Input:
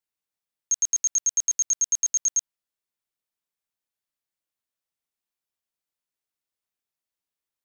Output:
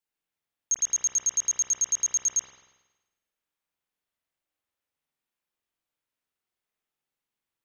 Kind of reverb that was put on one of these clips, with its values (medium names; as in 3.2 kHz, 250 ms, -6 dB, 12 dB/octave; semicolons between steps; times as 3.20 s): spring tank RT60 1.1 s, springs 46 ms, chirp 65 ms, DRR -5 dB; trim -2 dB